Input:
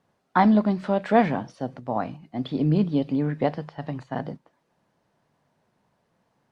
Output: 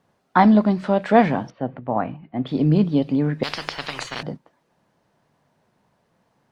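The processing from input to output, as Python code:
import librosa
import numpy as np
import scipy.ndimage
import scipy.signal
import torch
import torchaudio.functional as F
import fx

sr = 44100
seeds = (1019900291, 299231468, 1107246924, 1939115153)

y = fx.lowpass(x, sr, hz=2800.0, slope=24, at=(1.5, 2.47))
y = fx.spectral_comp(y, sr, ratio=10.0, at=(3.43, 4.23))
y = y * librosa.db_to_amplitude(4.0)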